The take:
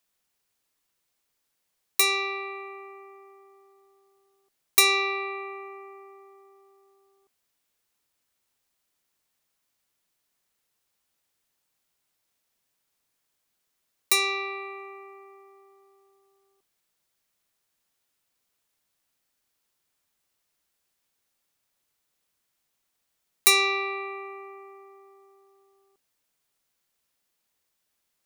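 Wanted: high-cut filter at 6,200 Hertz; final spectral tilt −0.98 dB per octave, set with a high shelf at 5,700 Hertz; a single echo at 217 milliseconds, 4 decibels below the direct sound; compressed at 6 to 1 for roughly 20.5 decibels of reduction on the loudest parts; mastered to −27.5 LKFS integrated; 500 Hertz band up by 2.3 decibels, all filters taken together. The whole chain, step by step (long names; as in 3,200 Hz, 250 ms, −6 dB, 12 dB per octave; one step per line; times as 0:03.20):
low-pass filter 6,200 Hz
parametric band 500 Hz +3.5 dB
high-shelf EQ 5,700 Hz −8 dB
downward compressor 6 to 1, threshold −41 dBFS
single-tap delay 217 ms −4 dB
level +15.5 dB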